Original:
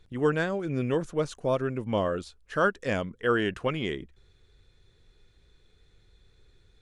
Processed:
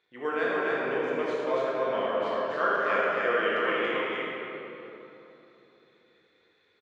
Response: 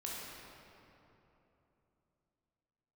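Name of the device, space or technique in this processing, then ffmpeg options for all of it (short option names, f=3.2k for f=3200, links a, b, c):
station announcement: -filter_complex "[0:a]highpass=480,lowpass=3.6k,equalizer=f=2.1k:t=o:w=0.52:g=5.5,aecho=1:1:78.72|282.8:0.355|0.794[a];[1:a]atrim=start_sample=2205[b];[a][b]afir=irnorm=-1:irlink=0"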